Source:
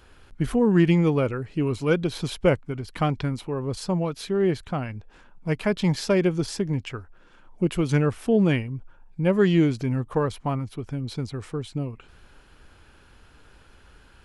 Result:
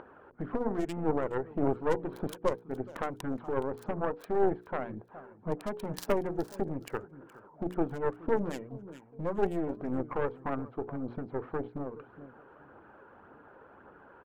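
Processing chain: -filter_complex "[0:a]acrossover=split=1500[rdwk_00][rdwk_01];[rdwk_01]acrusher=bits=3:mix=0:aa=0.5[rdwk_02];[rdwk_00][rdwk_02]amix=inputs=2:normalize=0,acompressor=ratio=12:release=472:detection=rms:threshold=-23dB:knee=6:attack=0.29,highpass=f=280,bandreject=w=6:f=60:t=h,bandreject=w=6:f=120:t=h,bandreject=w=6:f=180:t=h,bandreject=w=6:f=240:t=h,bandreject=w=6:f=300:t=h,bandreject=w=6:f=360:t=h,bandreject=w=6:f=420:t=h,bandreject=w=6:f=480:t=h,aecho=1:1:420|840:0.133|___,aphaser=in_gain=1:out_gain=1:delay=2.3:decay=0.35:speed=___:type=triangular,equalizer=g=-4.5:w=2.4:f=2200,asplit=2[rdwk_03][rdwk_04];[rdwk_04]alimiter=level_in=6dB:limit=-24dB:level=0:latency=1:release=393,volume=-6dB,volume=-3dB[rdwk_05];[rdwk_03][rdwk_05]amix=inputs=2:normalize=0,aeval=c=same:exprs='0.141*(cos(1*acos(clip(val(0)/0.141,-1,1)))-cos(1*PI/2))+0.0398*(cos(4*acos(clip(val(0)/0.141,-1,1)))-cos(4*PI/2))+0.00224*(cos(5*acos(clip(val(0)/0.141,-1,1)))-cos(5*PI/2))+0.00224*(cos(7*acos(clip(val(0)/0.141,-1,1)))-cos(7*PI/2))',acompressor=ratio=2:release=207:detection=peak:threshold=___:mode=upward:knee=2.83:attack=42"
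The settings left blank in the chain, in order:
0.0333, 1.8, -51dB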